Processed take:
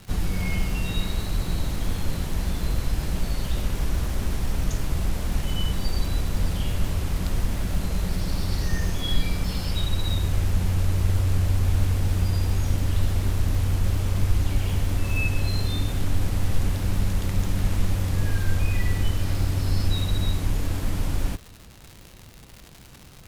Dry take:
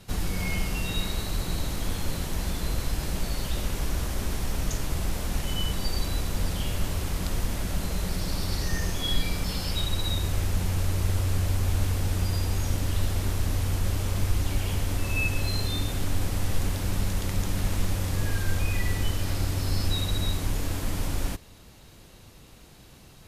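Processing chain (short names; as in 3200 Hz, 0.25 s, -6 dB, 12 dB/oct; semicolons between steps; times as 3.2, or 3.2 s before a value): tone controls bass +4 dB, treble -3 dB; crackle 220/s -33 dBFS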